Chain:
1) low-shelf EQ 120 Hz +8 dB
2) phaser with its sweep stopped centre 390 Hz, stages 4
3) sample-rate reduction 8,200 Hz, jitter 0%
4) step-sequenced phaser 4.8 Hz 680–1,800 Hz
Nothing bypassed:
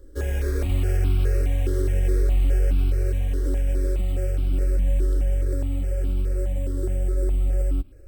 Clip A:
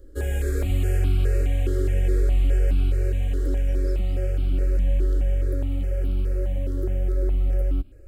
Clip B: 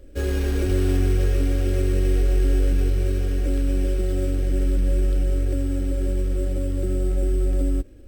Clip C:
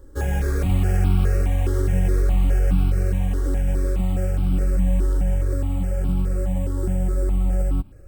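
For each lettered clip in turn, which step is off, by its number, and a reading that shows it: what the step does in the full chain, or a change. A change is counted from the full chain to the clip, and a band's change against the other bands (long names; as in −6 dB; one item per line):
3, distortion level −21 dB
4, 250 Hz band +4.0 dB
2, 1 kHz band +6.0 dB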